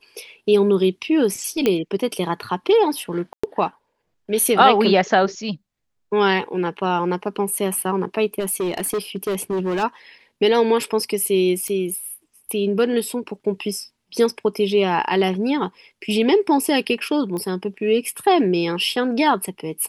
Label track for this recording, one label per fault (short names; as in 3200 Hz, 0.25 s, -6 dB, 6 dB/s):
1.660000	1.660000	pop -6 dBFS
3.330000	3.440000	gap 0.105 s
8.390000	9.840000	clipped -19 dBFS
11.680000	11.680000	pop -16 dBFS
17.370000	17.370000	pop -19 dBFS